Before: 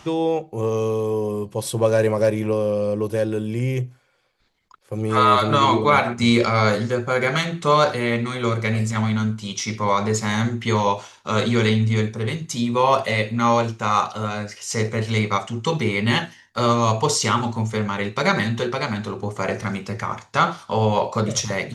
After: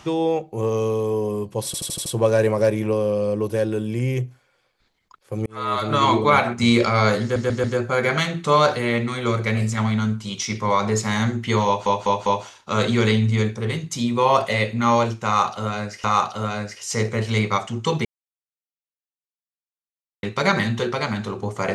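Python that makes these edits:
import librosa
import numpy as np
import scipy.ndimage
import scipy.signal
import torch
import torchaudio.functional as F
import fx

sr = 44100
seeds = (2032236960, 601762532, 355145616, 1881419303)

y = fx.edit(x, sr, fx.stutter(start_s=1.66, slice_s=0.08, count=6),
    fx.fade_in_span(start_s=5.06, length_s=0.65),
    fx.stutter(start_s=6.82, slice_s=0.14, count=4),
    fx.stutter(start_s=10.84, slice_s=0.2, count=4),
    fx.repeat(start_s=13.84, length_s=0.78, count=2),
    fx.silence(start_s=15.85, length_s=2.18), tone=tone)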